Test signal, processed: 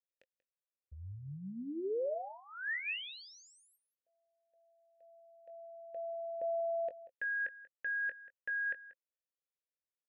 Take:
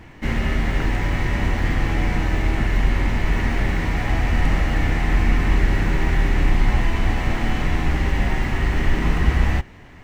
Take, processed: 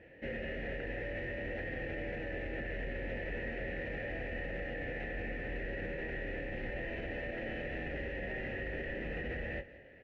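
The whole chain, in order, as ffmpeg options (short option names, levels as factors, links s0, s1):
-filter_complex "[0:a]asplit=3[s0][s1][s2];[s0]bandpass=f=530:t=q:w=8,volume=1[s3];[s1]bandpass=f=1840:t=q:w=8,volume=0.501[s4];[s2]bandpass=f=2480:t=q:w=8,volume=0.355[s5];[s3][s4][s5]amix=inputs=3:normalize=0,aemphasis=mode=reproduction:type=bsi,asplit=2[s6][s7];[s7]adelay=21,volume=0.282[s8];[s6][s8]amix=inputs=2:normalize=0,alimiter=level_in=2.51:limit=0.0631:level=0:latency=1:release=35,volume=0.398,asplit=2[s9][s10];[s10]aecho=0:1:186:0.133[s11];[s9][s11]amix=inputs=2:normalize=0,volume=1.12"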